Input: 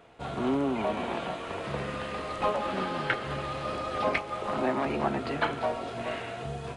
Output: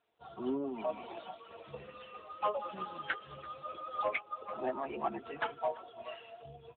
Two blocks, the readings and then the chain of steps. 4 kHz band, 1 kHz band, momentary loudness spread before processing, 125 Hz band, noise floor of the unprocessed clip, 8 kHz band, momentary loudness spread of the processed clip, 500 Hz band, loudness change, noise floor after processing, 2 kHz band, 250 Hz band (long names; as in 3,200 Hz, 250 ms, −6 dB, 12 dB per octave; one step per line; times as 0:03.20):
−11.5 dB, −7.5 dB, 6 LU, −18.5 dB, −39 dBFS, below −30 dB, 14 LU, −8.0 dB, −8.0 dB, −57 dBFS, −8.5 dB, −11.0 dB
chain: spectral dynamics exaggerated over time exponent 2
parametric band 130 Hz −15 dB 1.9 octaves
hard clipping −26.5 dBFS, distortion −14 dB
repeating echo 335 ms, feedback 21%, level −22 dB
level +1 dB
AMR narrowband 10.2 kbit/s 8,000 Hz